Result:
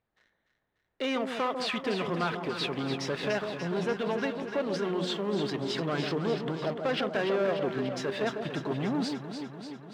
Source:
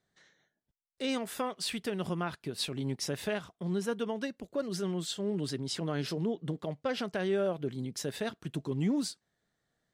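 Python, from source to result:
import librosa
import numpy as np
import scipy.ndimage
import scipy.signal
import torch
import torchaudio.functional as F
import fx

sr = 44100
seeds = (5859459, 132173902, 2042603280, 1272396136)

p1 = fx.hum_notches(x, sr, base_hz=60, count=3)
p2 = fx.level_steps(p1, sr, step_db=19)
p3 = p1 + (p2 * librosa.db_to_amplitude(-2.0))
p4 = fx.leveller(p3, sr, passes=2)
p5 = fx.dmg_noise_colour(p4, sr, seeds[0], colour='brown', level_db=-64.0)
p6 = scipy.signal.sosfilt(scipy.signal.butter(2, 2700.0, 'lowpass', fs=sr, output='sos'), p5)
p7 = fx.low_shelf(p6, sr, hz=360.0, db=-9.5)
p8 = fx.leveller(p7, sr, passes=1)
p9 = fx.highpass(p8, sr, hz=110.0, slope=6)
p10 = p9 + fx.echo_alternate(p9, sr, ms=147, hz=1000.0, feedback_pct=81, wet_db=-6.0, dry=0)
y = p10 * librosa.db_to_amplitude(-3.0)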